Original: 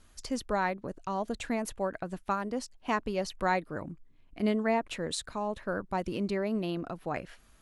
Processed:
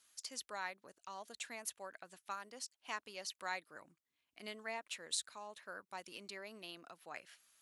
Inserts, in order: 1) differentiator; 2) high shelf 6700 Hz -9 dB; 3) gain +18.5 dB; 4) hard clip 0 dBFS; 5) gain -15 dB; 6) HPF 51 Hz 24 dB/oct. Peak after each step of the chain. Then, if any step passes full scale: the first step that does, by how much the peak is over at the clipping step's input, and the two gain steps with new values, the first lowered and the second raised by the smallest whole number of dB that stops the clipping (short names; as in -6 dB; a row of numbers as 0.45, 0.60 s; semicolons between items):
-18.0, -23.5, -5.0, -5.0, -20.0, -20.0 dBFS; no overload